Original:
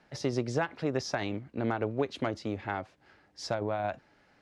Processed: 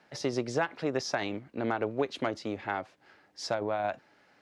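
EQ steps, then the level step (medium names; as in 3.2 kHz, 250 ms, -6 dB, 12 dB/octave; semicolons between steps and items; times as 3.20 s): high-pass 260 Hz 6 dB/octave; +2.0 dB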